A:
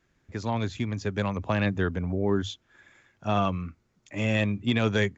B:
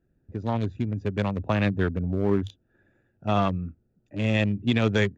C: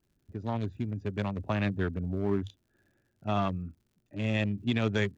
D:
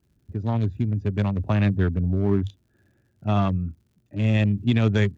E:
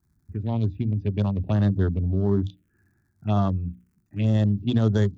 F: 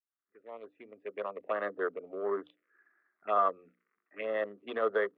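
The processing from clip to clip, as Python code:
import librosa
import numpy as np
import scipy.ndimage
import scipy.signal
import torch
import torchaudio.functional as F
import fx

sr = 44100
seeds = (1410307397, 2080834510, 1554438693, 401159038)

y1 = fx.wiener(x, sr, points=41)
y1 = F.gain(torch.from_numpy(y1), 2.5).numpy()
y2 = fx.notch(y1, sr, hz=500.0, q=12.0)
y2 = fx.dmg_crackle(y2, sr, seeds[0], per_s=110.0, level_db=-55.0)
y2 = F.gain(torch.from_numpy(y2), -5.5).numpy()
y3 = scipy.signal.sosfilt(scipy.signal.butter(2, 57.0, 'highpass', fs=sr, output='sos'), y2)
y3 = fx.low_shelf(y3, sr, hz=180.0, db=11.5)
y3 = F.gain(torch.from_numpy(y3), 3.0).numpy()
y4 = fx.hum_notches(y3, sr, base_hz=60, count=5)
y4 = fx.env_phaser(y4, sr, low_hz=500.0, high_hz=2400.0, full_db=-18.0)
y5 = fx.fade_in_head(y4, sr, length_s=1.63)
y5 = fx.cabinet(y5, sr, low_hz=480.0, low_slope=24, high_hz=2400.0, hz=(480.0, 860.0, 1200.0, 2000.0), db=(7, -8, 10, 8))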